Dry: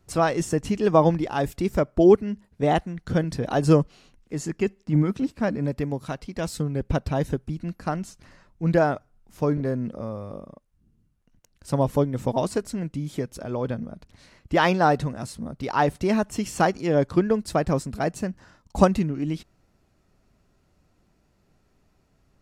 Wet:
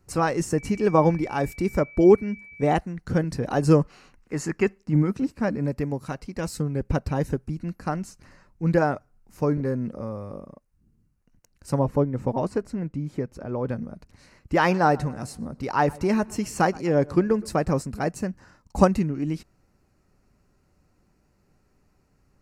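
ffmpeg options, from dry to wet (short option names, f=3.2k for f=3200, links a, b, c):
-filter_complex "[0:a]asettb=1/sr,asplit=3[a][b][c];[a]atrim=end=0.584[d];[b]atrim=start=0.58:end=2.77,asetpts=PTS-STARTPTS,afade=t=in:d=0.004:c=qsin,afade=t=out:st=2.186:d=0.004:c=qsin,aeval=exprs='val(0)+0.00794*sin(2*PI*2300*n/s)':c=same[e];[c]atrim=start=2.766[f];[d][e]acrossfade=d=0.004:c1=hsin:c2=qsin[g];[g][f]acrossfade=d=0.004:c1=qsin:c2=hsin,asettb=1/sr,asplit=3[h][i][j];[h]atrim=end=3.814[k];[i]atrim=start=3.81:end=4.78,asetpts=PTS-STARTPTS,afade=t=in:d=0.004:c=qsin,afade=t=out:st=0.966:d=0.004:c=qsin,equalizer=f=1.4k:w=0.55:g=8.5[l];[j]atrim=start=4.776[m];[k][l]acrossfade=d=0.004:c1=hsin:c2=qsin[n];[n][m]acrossfade=d=0.004:c1=qsin:c2=hsin,asettb=1/sr,asplit=3[o][p][q];[o]atrim=end=11.794[r];[p]atrim=start=11.79:end=13.68,asetpts=PTS-STARTPTS,afade=t=in:d=0.004:c=qsin,afade=t=out:st=1.886:d=0.004:c=qsin,lowpass=f=1.9k:p=1[s];[q]atrim=start=13.676[t];[r][s]acrossfade=d=0.004:c1=hsin:c2=qsin[u];[u][t]acrossfade=d=0.004:c1=qsin:c2=hsin,asettb=1/sr,asplit=3[v][w][x];[v]atrim=end=14.564[y];[w]atrim=start=14.56:end=17.81,asetpts=PTS-STARTPTS,afade=t=in:d=0.004:c=qsin,afade=t=out:st=3.246:d=0.004:c=qsin,asplit=2[z][aa];[aa]adelay=121,lowpass=f=4k:p=1,volume=-22.5dB,asplit=2[ab][ac];[ac]adelay=121,lowpass=f=4k:p=1,volume=0.52,asplit=2[ad][ae];[ae]adelay=121,lowpass=f=4k:p=1,volume=0.52,asplit=2[af][ag];[ag]adelay=121,lowpass=f=4k:p=1,volume=0.52[ah];[z][ab][ad][af][ah]amix=inputs=5:normalize=0,atrim=end_sample=143325[ai];[x]atrim=start=17.806[aj];[y][ai]acrossfade=d=0.004:c1=hsin:c2=qsin[ak];[ak][aj]acrossfade=d=0.004:c1=qsin:c2=hsin,equalizer=f=3.4k:t=o:w=0.31:g=-12.5,bandreject=f=660:w=12"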